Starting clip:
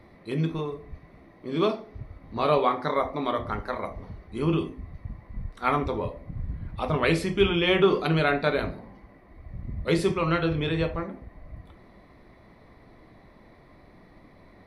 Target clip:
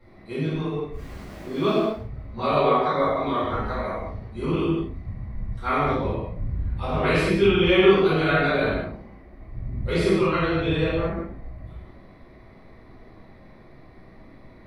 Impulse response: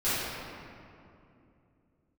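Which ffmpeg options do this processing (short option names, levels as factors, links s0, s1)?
-filter_complex "[0:a]asettb=1/sr,asplit=3[s0][s1][s2];[s0]atrim=end=0.924[s3];[s1]atrim=start=0.92:end=1.84,asetpts=PTS-STARTPTS,afade=t=in:d=0.004:c=qsin,afade=t=out:st=0.916:d=0.004:c=qsin,aeval=exprs='val(0)+0.5*0.00891*sgn(val(0))':c=same[s4];[s2]atrim=start=1.836[s5];[s3][s4]acrossfade=d=0.004:c1=hsin:c2=qsin[s6];[s6][s5]acrossfade=d=0.004:c1=qsin:c2=hsin[s7];[1:a]atrim=start_sample=2205,afade=t=out:st=0.3:d=0.01,atrim=end_sample=13671[s8];[s7][s8]afir=irnorm=-1:irlink=0,volume=0.398"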